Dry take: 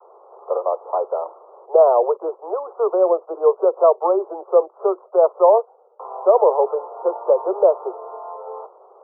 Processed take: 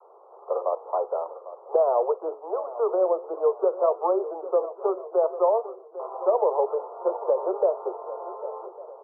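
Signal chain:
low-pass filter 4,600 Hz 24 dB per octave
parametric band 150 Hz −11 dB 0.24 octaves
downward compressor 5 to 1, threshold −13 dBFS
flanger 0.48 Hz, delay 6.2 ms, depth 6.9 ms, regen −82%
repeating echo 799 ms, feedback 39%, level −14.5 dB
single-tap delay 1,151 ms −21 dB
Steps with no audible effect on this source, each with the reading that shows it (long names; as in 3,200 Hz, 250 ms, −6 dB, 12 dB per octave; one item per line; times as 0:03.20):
low-pass filter 4,600 Hz: nothing at its input above 1,400 Hz
parametric band 150 Hz: nothing at its input below 320 Hz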